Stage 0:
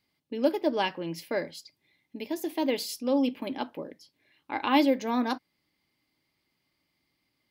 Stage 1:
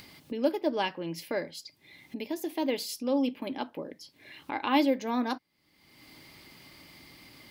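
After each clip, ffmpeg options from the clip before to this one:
-af "acompressor=mode=upward:threshold=-29dB:ratio=2.5,volume=-2dB"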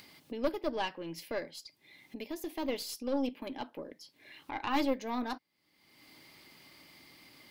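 -af "lowshelf=f=130:g=-10,aeval=exprs='(tanh(10*val(0)+0.7)-tanh(0.7))/10':c=same"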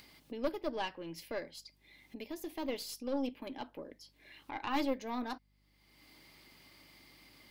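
-af "aeval=exprs='val(0)+0.000398*(sin(2*PI*50*n/s)+sin(2*PI*2*50*n/s)/2+sin(2*PI*3*50*n/s)/3+sin(2*PI*4*50*n/s)/4+sin(2*PI*5*50*n/s)/5)':c=same,volume=-3dB"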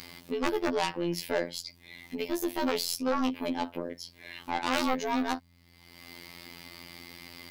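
-af "aeval=exprs='0.0891*sin(PI/2*3.98*val(0)/0.0891)':c=same,afftfilt=real='hypot(re,im)*cos(PI*b)':imag='0':win_size=2048:overlap=0.75"

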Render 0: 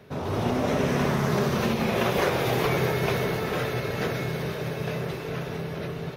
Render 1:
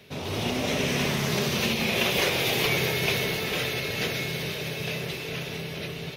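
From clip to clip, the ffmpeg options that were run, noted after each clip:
-af "highshelf=f=1.9k:t=q:w=1.5:g=9.5,bandreject=f=60:t=h:w=6,bandreject=f=120:t=h:w=6,volume=-3dB"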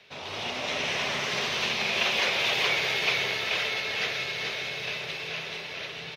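-filter_complex "[0:a]acrossover=split=590 6100:gain=0.178 1 0.1[a][b][c];[a][b][c]amix=inputs=3:normalize=0,aecho=1:1:429:0.631"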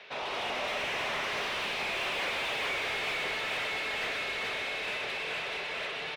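-filter_complex "[0:a]asplit=2[a][b];[b]highpass=f=720:p=1,volume=26dB,asoftclip=type=tanh:threshold=-13dB[c];[a][c]amix=inputs=2:normalize=0,lowpass=f=1.5k:p=1,volume=-6dB,bass=f=250:g=-4,treble=f=4k:g=-2,volume=-8.5dB"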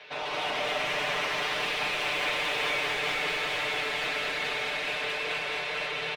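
-filter_complex "[0:a]aecho=1:1:6.7:0.74,asplit=2[a][b];[b]aecho=0:1:214:0.668[c];[a][c]amix=inputs=2:normalize=0"

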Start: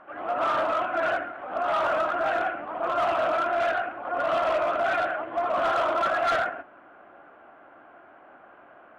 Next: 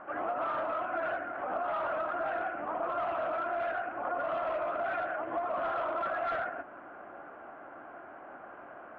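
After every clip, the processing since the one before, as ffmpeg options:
-af "lowpass=2.2k,acompressor=threshold=-35dB:ratio=6,volume=3.5dB"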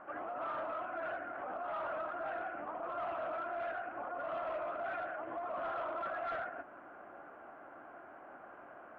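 -af "alimiter=level_in=4dB:limit=-24dB:level=0:latency=1:release=97,volume=-4dB,volume=-5dB"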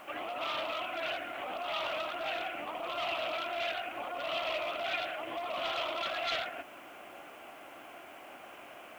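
-af "aexciter=amount=12.8:drive=7:freq=2.4k,volume=2.5dB"

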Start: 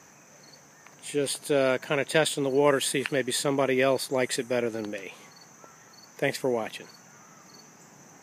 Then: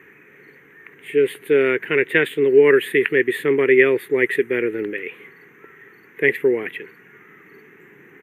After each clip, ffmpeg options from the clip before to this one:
-af "firequalizer=gain_entry='entry(230,0);entry(410,14);entry(600,-13);entry(1900,14);entry(3400,-4);entry(5100,-30);entry(12000,-1)':delay=0.05:min_phase=1,volume=1dB"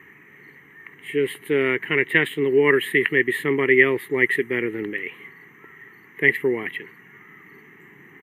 -af "aecho=1:1:1:0.53,volume=-1dB"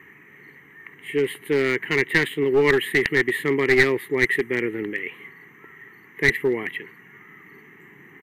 -af "aeval=exprs='clip(val(0),-1,0.168)':c=same"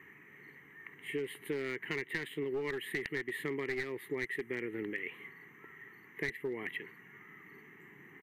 -af "acompressor=threshold=-26dB:ratio=8,volume=-7.5dB"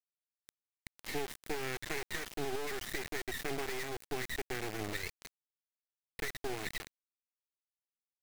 -af "acrusher=bits=4:dc=4:mix=0:aa=0.000001,volume=3dB"

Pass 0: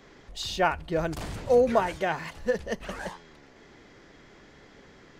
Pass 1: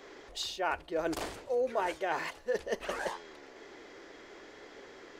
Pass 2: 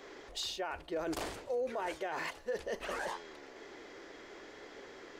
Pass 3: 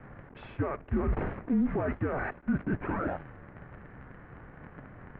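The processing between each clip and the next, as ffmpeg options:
-af "lowshelf=f=250:t=q:w=1.5:g=-12,areverse,acompressor=threshold=-32dB:ratio=5,areverse,volume=2dB"
-af "alimiter=level_in=4.5dB:limit=-24dB:level=0:latency=1:release=25,volume=-4.5dB"
-af "acrusher=bits=8:dc=4:mix=0:aa=0.000001,lowshelf=f=470:g=8,highpass=f=160:t=q:w=0.5412,highpass=f=160:t=q:w=1.307,lowpass=f=2.3k:t=q:w=0.5176,lowpass=f=2.3k:t=q:w=0.7071,lowpass=f=2.3k:t=q:w=1.932,afreqshift=-270,volume=4.5dB"

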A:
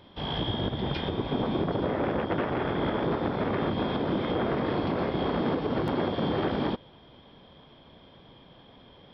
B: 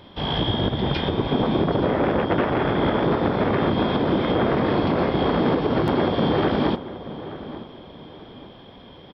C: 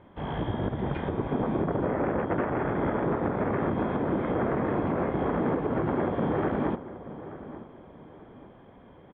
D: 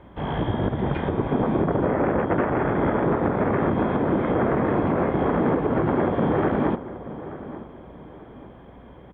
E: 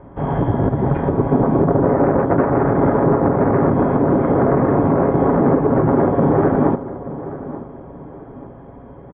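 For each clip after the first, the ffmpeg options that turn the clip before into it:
-filter_complex "[0:a]asplit=2[a][b];[b]adelay=881,lowpass=f=2k:p=1,volume=-14dB,asplit=2[c][d];[d]adelay=881,lowpass=f=2k:p=1,volume=0.37,asplit=2[e][f];[f]adelay=881,lowpass=f=2k:p=1,volume=0.37,asplit=2[g][h];[h]adelay=881,lowpass=f=2k:p=1,volume=0.37[i];[a][c][e][g][i]amix=inputs=5:normalize=0,volume=7dB"
-af "lowpass=f=2.1k:w=0.5412,lowpass=f=2.1k:w=1.3066,volume=-6.5dB"
-af "aeval=exprs='val(0)+0.00141*(sin(2*PI*60*n/s)+sin(2*PI*2*60*n/s)/2+sin(2*PI*3*60*n/s)/3+sin(2*PI*4*60*n/s)/4+sin(2*PI*5*60*n/s)/5)':c=same,volume=5.5dB"
-af "lowpass=1.2k,aecho=1:1:7.3:0.36,volume=6.5dB"

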